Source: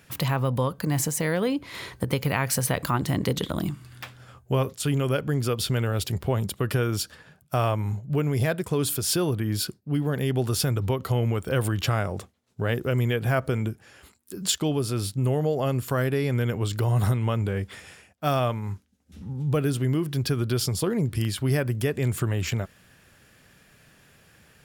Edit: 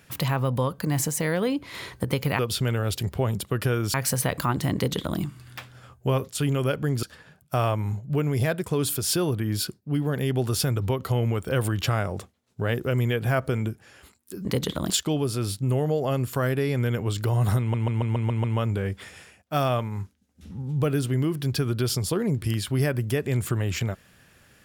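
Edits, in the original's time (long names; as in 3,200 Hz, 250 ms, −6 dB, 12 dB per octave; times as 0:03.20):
0:03.19–0:03.64: duplicate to 0:14.45
0:05.48–0:07.03: move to 0:02.39
0:17.15: stutter 0.14 s, 7 plays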